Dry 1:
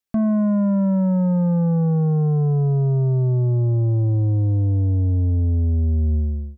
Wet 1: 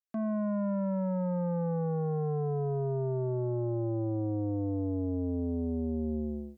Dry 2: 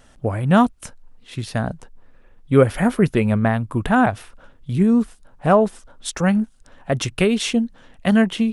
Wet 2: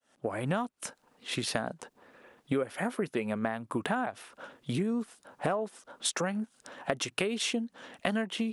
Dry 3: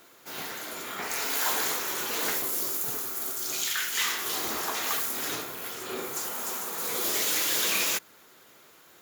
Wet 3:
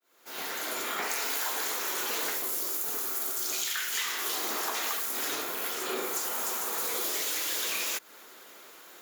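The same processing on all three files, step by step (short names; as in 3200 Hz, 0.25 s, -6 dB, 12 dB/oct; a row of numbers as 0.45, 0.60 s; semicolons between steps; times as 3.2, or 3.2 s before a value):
opening faded in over 0.72 s; HPF 280 Hz 12 dB/oct; compressor 10:1, threshold -33 dBFS; gain +5 dB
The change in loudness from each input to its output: -12.5, -14.0, -2.0 LU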